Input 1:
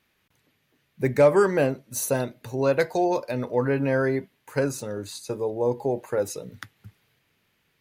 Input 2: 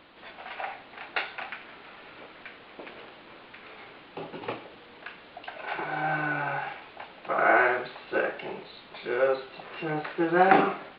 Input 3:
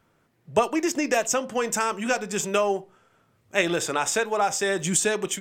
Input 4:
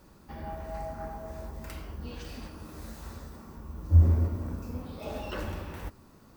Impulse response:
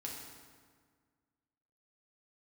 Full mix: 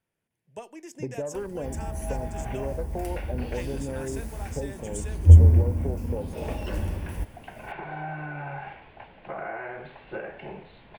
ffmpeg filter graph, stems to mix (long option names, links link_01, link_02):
-filter_complex "[0:a]afwtdn=0.0501,acontrast=39,volume=-6dB[link_01];[1:a]lowpass=frequency=2200:poles=1,asubboost=boost=5:cutoff=130,adelay=2000,volume=0dB[link_02];[2:a]volume=-19dB[link_03];[3:a]lowshelf=frequency=200:gain=9,acompressor=mode=upward:threshold=-41dB:ratio=2.5,adelay=1350,volume=0.5dB[link_04];[link_01][link_02]amix=inputs=2:normalize=0,highshelf=frequency=3900:gain=-6,acompressor=threshold=-30dB:ratio=10,volume=0dB[link_05];[link_03][link_04][link_05]amix=inputs=3:normalize=0,equalizer=frequency=1250:width_type=o:width=0.33:gain=-10,equalizer=frequency=4000:width_type=o:width=0.33:gain=-6,equalizer=frequency=10000:width_type=o:width=0.33:gain=11"